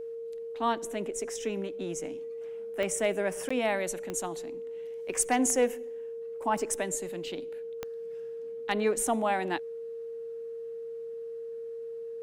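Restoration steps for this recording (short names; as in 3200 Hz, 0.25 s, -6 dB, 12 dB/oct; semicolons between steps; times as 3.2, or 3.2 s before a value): clip repair -16 dBFS; de-click; notch 460 Hz, Q 30; interpolate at 3.49, 15 ms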